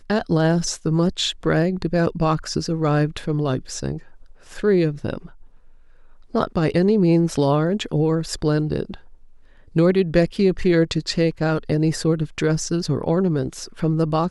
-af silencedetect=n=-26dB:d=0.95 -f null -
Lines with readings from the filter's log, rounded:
silence_start: 5.18
silence_end: 6.35 | silence_duration: 1.17